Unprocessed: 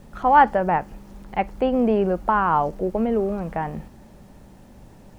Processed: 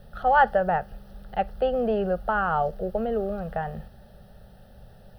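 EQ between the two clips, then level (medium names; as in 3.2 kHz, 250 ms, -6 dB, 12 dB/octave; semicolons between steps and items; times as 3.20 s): static phaser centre 1.5 kHz, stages 8; 0.0 dB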